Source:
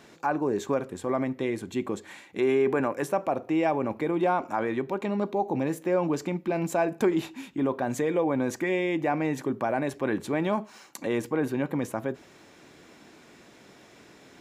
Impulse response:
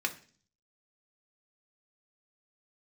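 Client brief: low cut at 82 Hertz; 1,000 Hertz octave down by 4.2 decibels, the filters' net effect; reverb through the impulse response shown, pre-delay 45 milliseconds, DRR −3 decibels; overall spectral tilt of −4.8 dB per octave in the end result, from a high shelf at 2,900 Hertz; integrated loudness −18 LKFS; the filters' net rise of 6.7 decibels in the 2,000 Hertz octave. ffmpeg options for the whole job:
-filter_complex "[0:a]highpass=82,equalizer=frequency=1000:width_type=o:gain=-8.5,equalizer=frequency=2000:width_type=o:gain=8.5,highshelf=frequency=2900:gain=6,asplit=2[link_01][link_02];[1:a]atrim=start_sample=2205,adelay=45[link_03];[link_02][link_03]afir=irnorm=-1:irlink=0,volume=-3dB[link_04];[link_01][link_04]amix=inputs=2:normalize=0,volume=6.5dB"

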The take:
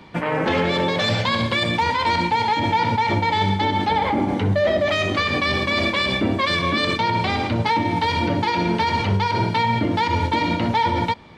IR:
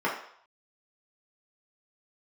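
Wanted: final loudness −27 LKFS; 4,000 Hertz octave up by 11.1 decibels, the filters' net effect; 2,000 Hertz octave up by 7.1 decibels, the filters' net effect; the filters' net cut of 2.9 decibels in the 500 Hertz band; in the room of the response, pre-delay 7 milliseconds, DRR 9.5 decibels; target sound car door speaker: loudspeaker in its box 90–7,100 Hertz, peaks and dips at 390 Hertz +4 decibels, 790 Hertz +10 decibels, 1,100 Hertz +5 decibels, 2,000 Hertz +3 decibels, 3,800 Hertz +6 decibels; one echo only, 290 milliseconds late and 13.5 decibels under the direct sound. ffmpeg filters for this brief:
-filter_complex "[0:a]equalizer=frequency=500:width_type=o:gain=-7.5,equalizer=frequency=2000:width_type=o:gain=4,equalizer=frequency=4000:width_type=o:gain=7.5,aecho=1:1:290:0.211,asplit=2[link_01][link_02];[1:a]atrim=start_sample=2205,adelay=7[link_03];[link_02][link_03]afir=irnorm=-1:irlink=0,volume=-22dB[link_04];[link_01][link_04]amix=inputs=2:normalize=0,highpass=90,equalizer=frequency=390:width_type=q:width=4:gain=4,equalizer=frequency=790:width_type=q:width=4:gain=10,equalizer=frequency=1100:width_type=q:width=4:gain=5,equalizer=frequency=2000:width_type=q:width=4:gain=3,equalizer=frequency=3800:width_type=q:width=4:gain=6,lowpass=frequency=7100:width=0.5412,lowpass=frequency=7100:width=1.3066,volume=-13dB"

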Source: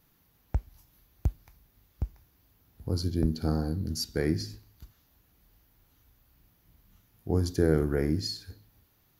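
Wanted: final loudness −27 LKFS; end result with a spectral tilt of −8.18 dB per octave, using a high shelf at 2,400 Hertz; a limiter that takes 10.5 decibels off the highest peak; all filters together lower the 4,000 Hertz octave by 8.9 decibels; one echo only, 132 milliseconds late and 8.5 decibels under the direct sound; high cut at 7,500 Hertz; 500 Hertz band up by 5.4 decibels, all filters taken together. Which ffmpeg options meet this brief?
ffmpeg -i in.wav -af "lowpass=7500,equalizer=frequency=500:width_type=o:gain=7,highshelf=frequency=2400:gain=-6.5,equalizer=frequency=4000:width_type=o:gain=-4,alimiter=limit=-18dB:level=0:latency=1,aecho=1:1:132:0.376,volume=5dB" out.wav

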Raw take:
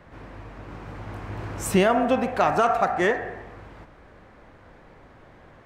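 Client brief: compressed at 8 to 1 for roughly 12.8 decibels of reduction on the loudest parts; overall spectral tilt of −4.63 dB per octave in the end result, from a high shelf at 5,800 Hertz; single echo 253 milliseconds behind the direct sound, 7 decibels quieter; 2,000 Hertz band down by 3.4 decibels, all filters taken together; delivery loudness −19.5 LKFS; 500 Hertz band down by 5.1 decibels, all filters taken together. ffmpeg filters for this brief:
ffmpeg -i in.wav -af "equalizer=frequency=500:width_type=o:gain=-7,equalizer=frequency=2000:width_type=o:gain=-4.5,highshelf=frequency=5800:gain=6,acompressor=threshold=-30dB:ratio=8,aecho=1:1:253:0.447,volume=16dB" out.wav

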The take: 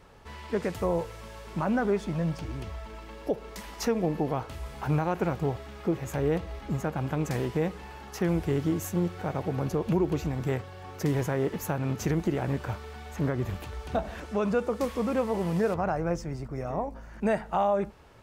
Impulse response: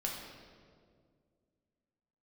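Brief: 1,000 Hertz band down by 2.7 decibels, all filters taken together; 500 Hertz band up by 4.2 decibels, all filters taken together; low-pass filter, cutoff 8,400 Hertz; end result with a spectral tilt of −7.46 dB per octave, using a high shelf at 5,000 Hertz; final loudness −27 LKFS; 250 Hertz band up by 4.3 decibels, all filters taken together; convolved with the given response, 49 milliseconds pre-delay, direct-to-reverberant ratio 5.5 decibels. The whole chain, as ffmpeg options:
-filter_complex "[0:a]lowpass=8400,equalizer=frequency=250:width_type=o:gain=5,equalizer=frequency=500:width_type=o:gain=5,equalizer=frequency=1000:width_type=o:gain=-6.5,highshelf=frequency=5000:gain=-5.5,asplit=2[link_01][link_02];[1:a]atrim=start_sample=2205,adelay=49[link_03];[link_02][link_03]afir=irnorm=-1:irlink=0,volume=-8dB[link_04];[link_01][link_04]amix=inputs=2:normalize=0,volume=-1.5dB"

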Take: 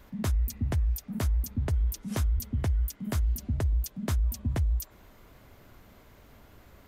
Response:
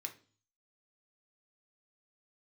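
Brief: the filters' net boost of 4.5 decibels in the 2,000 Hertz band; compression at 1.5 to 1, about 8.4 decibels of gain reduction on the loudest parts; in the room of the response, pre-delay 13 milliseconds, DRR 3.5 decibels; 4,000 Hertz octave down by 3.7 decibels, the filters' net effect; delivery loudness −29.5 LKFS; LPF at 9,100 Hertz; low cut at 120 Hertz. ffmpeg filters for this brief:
-filter_complex "[0:a]highpass=120,lowpass=9100,equalizer=frequency=2000:width_type=o:gain=7,equalizer=frequency=4000:width_type=o:gain=-7,acompressor=threshold=-53dB:ratio=1.5,asplit=2[link_01][link_02];[1:a]atrim=start_sample=2205,adelay=13[link_03];[link_02][link_03]afir=irnorm=-1:irlink=0,volume=-1dB[link_04];[link_01][link_04]amix=inputs=2:normalize=0,volume=15dB"

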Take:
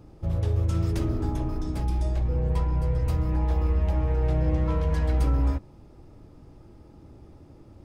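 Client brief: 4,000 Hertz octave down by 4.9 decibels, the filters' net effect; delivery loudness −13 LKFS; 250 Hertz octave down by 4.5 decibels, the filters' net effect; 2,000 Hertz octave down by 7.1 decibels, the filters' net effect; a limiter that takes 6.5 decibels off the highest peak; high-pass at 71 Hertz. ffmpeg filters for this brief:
ffmpeg -i in.wav -af "highpass=71,equalizer=frequency=250:width_type=o:gain=-7,equalizer=frequency=2000:width_type=o:gain=-8,equalizer=frequency=4000:width_type=o:gain=-4,volume=20dB,alimiter=limit=-4dB:level=0:latency=1" out.wav

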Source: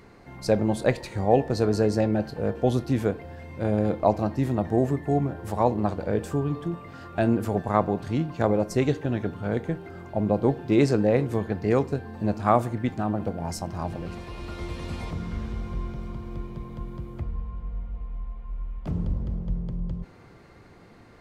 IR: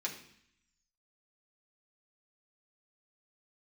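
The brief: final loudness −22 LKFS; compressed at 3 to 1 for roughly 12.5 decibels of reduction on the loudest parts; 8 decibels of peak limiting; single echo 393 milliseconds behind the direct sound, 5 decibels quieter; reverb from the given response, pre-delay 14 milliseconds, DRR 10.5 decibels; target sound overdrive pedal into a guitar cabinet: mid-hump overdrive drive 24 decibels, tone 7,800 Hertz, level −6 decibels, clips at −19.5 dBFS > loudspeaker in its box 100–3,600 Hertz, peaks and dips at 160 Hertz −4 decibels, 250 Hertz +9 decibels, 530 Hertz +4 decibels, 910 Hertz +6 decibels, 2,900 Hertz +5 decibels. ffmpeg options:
-filter_complex "[0:a]acompressor=threshold=-32dB:ratio=3,alimiter=limit=-24dB:level=0:latency=1,aecho=1:1:393:0.562,asplit=2[link_01][link_02];[1:a]atrim=start_sample=2205,adelay=14[link_03];[link_02][link_03]afir=irnorm=-1:irlink=0,volume=-12.5dB[link_04];[link_01][link_04]amix=inputs=2:normalize=0,asplit=2[link_05][link_06];[link_06]highpass=frequency=720:poles=1,volume=24dB,asoftclip=type=tanh:threshold=-19.5dB[link_07];[link_05][link_07]amix=inputs=2:normalize=0,lowpass=frequency=7800:poles=1,volume=-6dB,highpass=100,equalizer=frequency=160:width_type=q:width=4:gain=-4,equalizer=frequency=250:width_type=q:width=4:gain=9,equalizer=frequency=530:width_type=q:width=4:gain=4,equalizer=frequency=910:width_type=q:width=4:gain=6,equalizer=frequency=2900:width_type=q:width=4:gain=5,lowpass=frequency=3600:width=0.5412,lowpass=frequency=3600:width=1.3066,volume=5dB"

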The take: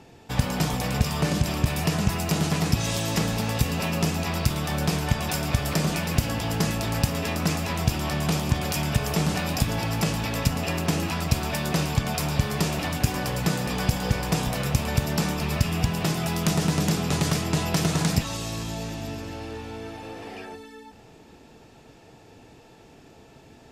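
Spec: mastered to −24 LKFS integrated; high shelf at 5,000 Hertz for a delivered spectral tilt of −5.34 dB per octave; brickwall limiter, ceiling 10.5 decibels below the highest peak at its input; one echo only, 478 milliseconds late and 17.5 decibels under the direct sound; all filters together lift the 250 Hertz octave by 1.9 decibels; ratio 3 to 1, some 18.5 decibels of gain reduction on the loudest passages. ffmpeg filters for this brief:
ffmpeg -i in.wav -af "equalizer=frequency=250:width_type=o:gain=3,highshelf=frequency=5000:gain=-3.5,acompressor=threshold=-42dB:ratio=3,alimiter=level_in=7.5dB:limit=-24dB:level=0:latency=1,volume=-7.5dB,aecho=1:1:478:0.133,volume=18dB" out.wav

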